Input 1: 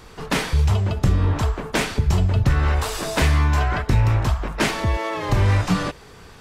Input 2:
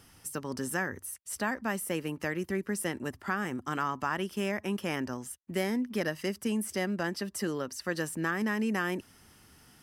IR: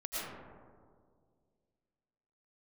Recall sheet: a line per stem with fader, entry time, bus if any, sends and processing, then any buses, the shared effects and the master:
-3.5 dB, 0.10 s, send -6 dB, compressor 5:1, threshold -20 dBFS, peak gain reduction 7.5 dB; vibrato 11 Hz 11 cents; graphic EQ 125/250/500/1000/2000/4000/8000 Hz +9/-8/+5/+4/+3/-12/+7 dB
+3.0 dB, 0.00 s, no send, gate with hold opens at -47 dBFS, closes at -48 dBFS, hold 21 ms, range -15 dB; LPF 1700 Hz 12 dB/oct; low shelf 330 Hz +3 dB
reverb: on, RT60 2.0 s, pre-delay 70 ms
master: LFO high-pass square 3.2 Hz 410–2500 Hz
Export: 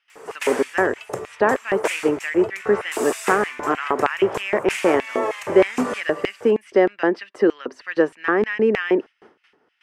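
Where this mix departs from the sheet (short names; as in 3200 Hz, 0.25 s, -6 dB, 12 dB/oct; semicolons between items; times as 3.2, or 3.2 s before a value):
stem 1: send -6 dB -> -12 dB; stem 2 +3.0 dB -> +12.5 dB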